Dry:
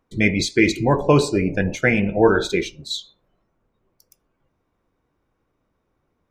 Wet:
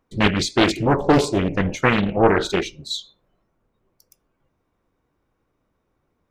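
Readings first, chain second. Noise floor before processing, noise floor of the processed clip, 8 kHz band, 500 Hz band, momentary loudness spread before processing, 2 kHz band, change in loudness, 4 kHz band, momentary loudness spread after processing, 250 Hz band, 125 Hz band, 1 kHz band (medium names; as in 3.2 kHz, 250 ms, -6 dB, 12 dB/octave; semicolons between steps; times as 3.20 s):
-73 dBFS, -73 dBFS, -0.5 dB, -1.0 dB, 11 LU, -1.5 dB, -0.5 dB, +2.5 dB, 10 LU, 0.0 dB, -0.5 dB, +3.5 dB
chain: loudspeaker Doppler distortion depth 0.83 ms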